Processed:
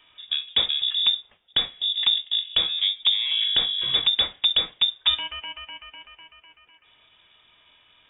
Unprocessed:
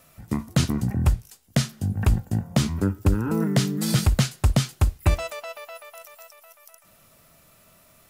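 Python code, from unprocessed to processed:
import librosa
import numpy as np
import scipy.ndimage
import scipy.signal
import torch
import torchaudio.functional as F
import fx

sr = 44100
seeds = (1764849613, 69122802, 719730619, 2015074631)

p1 = scipy.signal.sosfilt(scipy.signal.butter(2, 66.0, 'highpass', fs=sr, output='sos'), x)
p2 = 10.0 ** (-25.0 / 20.0) * np.tanh(p1 / 10.0 ** (-25.0 / 20.0))
p3 = p1 + F.gain(torch.from_numpy(p2), -5.0).numpy()
p4 = fx.freq_invert(p3, sr, carrier_hz=3600)
y = F.gain(torch.from_numpy(p4), -3.0).numpy()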